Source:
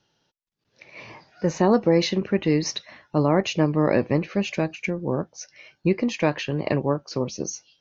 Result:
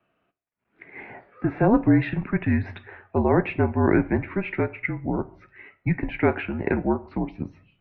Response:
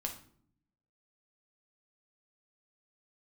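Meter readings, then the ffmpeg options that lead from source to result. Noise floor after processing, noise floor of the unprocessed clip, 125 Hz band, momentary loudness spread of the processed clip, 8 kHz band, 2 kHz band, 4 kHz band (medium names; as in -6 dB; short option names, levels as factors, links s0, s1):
-74 dBFS, -75 dBFS, +1.0 dB, 17 LU, no reading, +2.0 dB, under -15 dB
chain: -filter_complex "[0:a]asplit=2[s0][s1];[1:a]atrim=start_sample=2205[s2];[s1][s2]afir=irnorm=-1:irlink=0,volume=0.447[s3];[s0][s3]amix=inputs=2:normalize=0,highpass=f=350:t=q:w=0.5412,highpass=f=350:t=q:w=1.307,lowpass=f=2600:t=q:w=0.5176,lowpass=f=2600:t=q:w=0.7071,lowpass=f=2600:t=q:w=1.932,afreqshift=-210"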